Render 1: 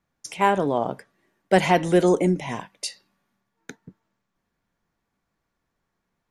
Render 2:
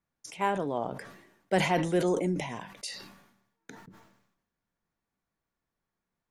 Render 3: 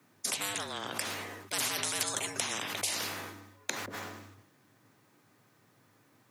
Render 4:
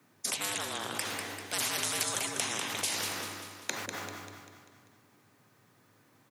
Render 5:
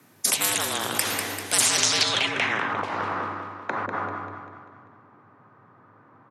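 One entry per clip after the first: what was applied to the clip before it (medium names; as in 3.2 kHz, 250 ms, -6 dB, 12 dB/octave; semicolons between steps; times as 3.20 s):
decay stretcher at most 65 dB/s; trim -9 dB
frequency shift +98 Hz; spectrum-flattening compressor 10:1; trim +3.5 dB
feedback delay 196 ms, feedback 50%, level -7 dB
low-pass sweep 13 kHz -> 1.2 kHz, 1.41–2.78 s; trim +8.5 dB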